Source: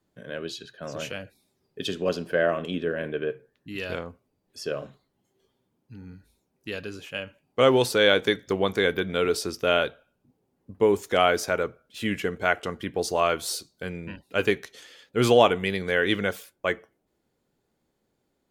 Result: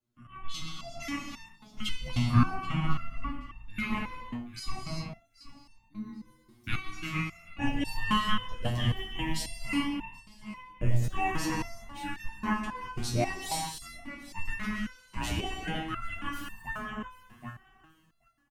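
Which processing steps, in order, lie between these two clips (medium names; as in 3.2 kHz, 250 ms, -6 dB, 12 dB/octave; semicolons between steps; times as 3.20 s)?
level rider gain up to 14.5 dB; frequency shift -410 Hz; 8.69–9.57 s: Butterworth band-stop 1.3 kHz, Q 1.3; feedback delay 778 ms, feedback 20%, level -17 dB; gated-style reverb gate 400 ms flat, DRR 3 dB; resonator arpeggio 3.7 Hz 120–900 Hz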